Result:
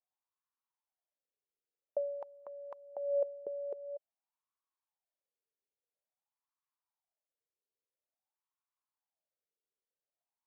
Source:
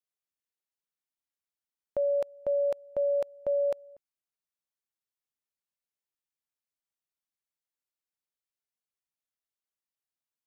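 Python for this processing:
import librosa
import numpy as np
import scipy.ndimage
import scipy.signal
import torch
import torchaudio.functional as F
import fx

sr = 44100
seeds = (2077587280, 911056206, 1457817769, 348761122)

y = fx.over_compress(x, sr, threshold_db=-33.0, ratio=-1.0)
y = fx.wah_lfo(y, sr, hz=0.49, low_hz=420.0, high_hz=1100.0, q=5.5)
y = y * librosa.db_to_amplitude(4.5)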